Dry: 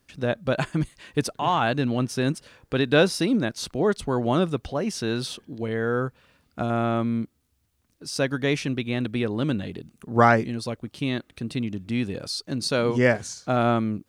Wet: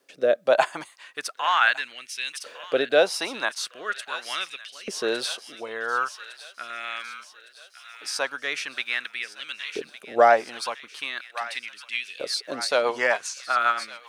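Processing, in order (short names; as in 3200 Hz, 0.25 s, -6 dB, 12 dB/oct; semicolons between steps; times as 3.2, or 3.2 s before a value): LFO high-pass saw up 0.41 Hz 450–3000 Hz; thin delay 1.159 s, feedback 60%, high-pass 1500 Hz, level -12 dB; rotary speaker horn 1.1 Hz, later 7.5 Hz, at 10.57; gain +4 dB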